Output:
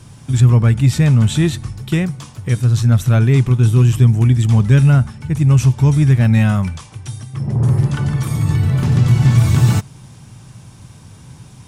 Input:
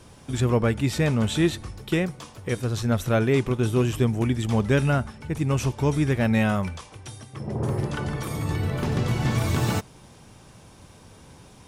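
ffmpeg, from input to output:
ffmpeg -i in.wav -filter_complex "[0:a]equalizer=frequency=125:width_type=o:width=1:gain=12,equalizer=frequency=500:width_type=o:width=1:gain=-6,equalizer=frequency=8000:width_type=o:width=1:gain=4,asplit=2[link_01][link_02];[link_02]acontrast=37,volume=-2dB[link_03];[link_01][link_03]amix=inputs=2:normalize=0,volume=-4dB" out.wav

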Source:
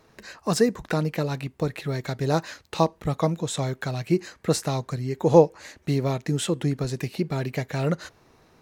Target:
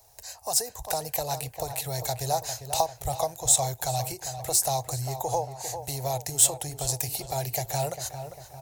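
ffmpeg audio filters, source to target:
ffmpeg -i in.wav -filter_complex "[0:a]highshelf=frequency=6400:gain=4.5,acrossover=split=220|5500[link_01][link_02][link_03];[link_03]asoftclip=type=tanh:threshold=-26dB[link_04];[link_01][link_02][link_04]amix=inputs=3:normalize=0,acompressor=threshold=-23dB:ratio=6,firequalizer=gain_entry='entry(110,0);entry(180,-28);entry(750,6);entry(1200,-14);entry(5300,4);entry(7600,10);entry(12000,14)':delay=0.05:min_phase=1,asplit=2[link_05][link_06];[link_06]adelay=399,lowpass=frequency=2300:poles=1,volume=-9dB,asplit=2[link_07][link_08];[link_08]adelay=399,lowpass=frequency=2300:poles=1,volume=0.52,asplit=2[link_09][link_10];[link_10]adelay=399,lowpass=frequency=2300:poles=1,volume=0.52,asplit=2[link_11][link_12];[link_12]adelay=399,lowpass=frequency=2300:poles=1,volume=0.52,asplit=2[link_13][link_14];[link_14]adelay=399,lowpass=frequency=2300:poles=1,volume=0.52,asplit=2[link_15][link_16];[link_16]adelay=399,lowpass=frequency=2300:poles=1,volume=0.52[link_17];[link_07][link_09][link_11][link_13][link_15][link_17]amix=inputs=6:normalize=0[link_18];[link_05][link_18]amix=inputs=2:normalize=0,dynaudnorm=framelen=130:gausssize=11:maxgain=4.5dB" out.wav

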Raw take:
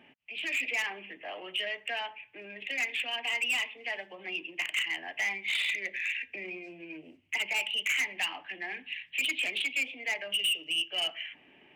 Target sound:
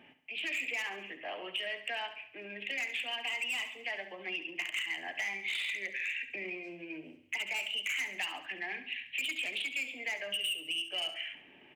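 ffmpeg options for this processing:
ffmpeg -i in.wav -filter_complex "[0:a]acompressor=threshold=-33dB:ratio=6,asplit=2[link_01][link_02];[link_02]aecho=0:1:69|138|207|276|345:0.266|0.128|0.0613|0.0294|0.0141[link_03];[link_01][link_03]amix=inputs=2:normalize=0" out.wav

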